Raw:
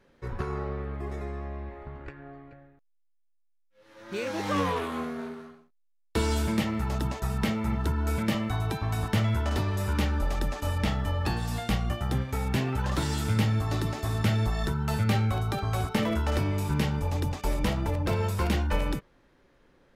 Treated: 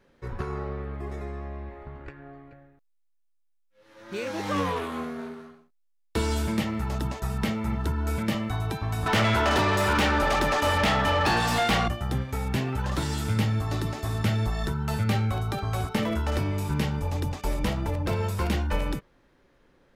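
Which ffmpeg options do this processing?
-filter_complex "[0:a]asettb=1/sr,asplit=3[a][b][c];[a]atrim=end=9.064[d];[b]atrim=start=9.06:end=11.88,asetpts=PTS-STARTPTS,afade=t=in:d=0.004:c=qsin,afade=t=out:st=2.816:d=0.004:c=qsin,asplit=2[e][f];[f]highpass=f=720:p=1,volume=26dB,asoftclip=type=tanh:threshold=-14dB[g];[e][g]amix=inputs=2:normalize=0,lowpass=f=3k:p=1,volume=-6dB[h];[c]atrim=start=11.876[i];[d][h]acrossfade=d=0.004:c1=hsin:c2=qsin[j];[j][i]acrossfade=d=0.004:c1=qsin:c2=hsin"

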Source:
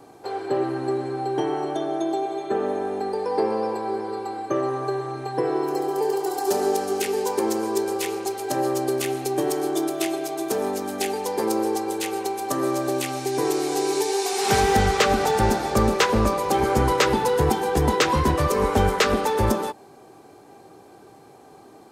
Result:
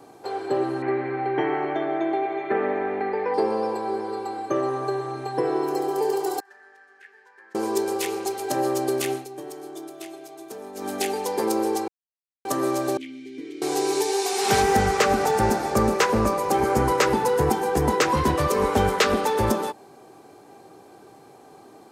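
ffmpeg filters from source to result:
-filter_complex "[0:a]asettb=1/sr,asplit=3[a][b][c];[a]atrim=end=0.824[d];[b]atrim=start=0.82:end=3.34,asetpts=PTS-STARTPTS,afade=t=in:d=0.004:c=qsin,afade=t=out:st=2.516:d=0.004:c=qsin,lowpass=f=2.1k:t=q:w=5.2[e];[c]atrim=start=3.336[f];[d][e]acrossfade=d=0.004:c1=hsin:c2=qsin[g];[g][f]acrossfade=d=0.004:c1=qsin:c2=hsin,asettb=1/sr,asplit=3[h][i][j];[h]atrim=end=6.404[k];[i]atrim=start=6.4:end=7.55,asetpts=PTS-STARTPTS,afade=t=in:d=0.004:c=qsin,afade=t=out:st=1.146:d=0.004:c=qsin,bandpass=f=1.7k:t=q:w=19[l];[j]atrim=start=7.546[m];[k][l]acrossfade=d=0.004:c1=hsin:c2=qsin[n];[n][m]acrossfade=d=0.004:c1=qsin:c2=hsin,asettb=1/sr,asplit=3[o][p][q];[o]atrim=end=12.974[r];[p]atrim=start=12.97:end=13.62,asetpts=PTS-STARTPTS,afade=t=in:d=0.004:c=qsin,afade=t=out:st=0.646:d=0.004:c=qsin,asplit=3[s][t][u];[s]bandpass=f=270:t=q:w=8,volume=0dB[v];[t]bandpass=f=2.29k:t=q:w=8,volume=-6dB[w];[u]bandpass=f=3.01k:t=q:w=8,volume=-9dB[x];[v][w][x]amix=inputs=3:normalize=0[y];[q]atrim=start=13.616[z];[r][y]acrossfade=d=0.004:c1=hsin:c2=qsin[aa];[aa][z]acrossfade=d=0.004:c1=qsin:c2=hsin,asettb=1/sr,asplit=3[ab][ac][ad];[ab]atrim=end=14.624[ae];[ac]atrim=start=14.62:end=18.17,asetpts=PTS-STARTPTS,afade=t=in:d=0.004:c=qsin,afade=t=out:st=3.546:d=0.004:c=qsin,equalizer=f=3.5k:w=1.8:g=-6[af];[ad]atrim=start=18.166[ag];[ae][af]acrossfade=d=0.004:c1=hsin:c2=qsin[ah];[ah][ag]acrossfade=d=0.004:c1=qsin:c2=hsin,asplit=5[ai][aj][ak][al][am];[ai]atrim=end=9.26,asetpts=PTS-STARTPTS,afade=t=out:st=9.13:d=0.13:silence=0.223872[an];[aj]atrim=start=9.26:end=10.74,asetpts=PTS-STARTPTS,volume=-13dB[ao];[ak]atrim=start=10.74:end=11.88,asetpts=PTS-STARTPTS,afade=t=in:d=0.13:silence=0.223872,afade=t=out:st=1.136:d=0.004:c=hsin[ap];[al]atrim=start=11.88:end=12.45,asetpts=PTS-STARTPTS,volume=0[aq];[am]atrim=start=12.45,asetpts=PTS-STARTPTS,afade=t=in:d=0.004:c=hsin[ar];[an][ao][ap][aq][ar]concat=n=5:v=0:a=1,lowshelf=f=61:g=-11"

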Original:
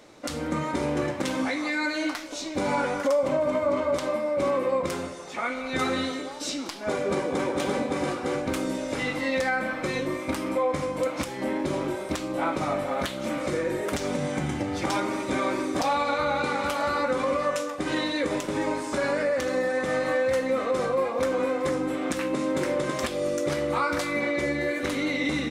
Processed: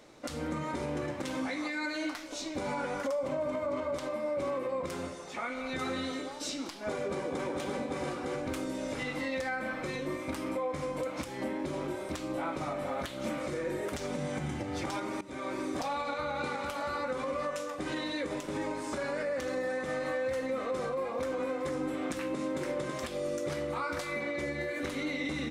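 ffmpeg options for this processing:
-filter_complex "[0:a]asplit=2[a][b];[a]atrim=end=15.21,asetpts=PTS-STARTPTS,afade=t=out:st=15.206:d=0.004:c=hsin:silence=0.1[c];[b]atrim=start=15.21,asetpts=PTS-STARTPTS,afade=t=in:d=0.58:silence=0.1[d];[c][d]concat=n=2:v=0:a=1,lowshelf=f=130:g=3.5,bandreject=f=96.78:t=h:w=4,bandreject=f=193.56:t=h:w=4,bandreject=f=290.34:t=h:w=4,alimiter=limit=-21dB:level=0:latency=1:release=160,volume=-4.5dB"

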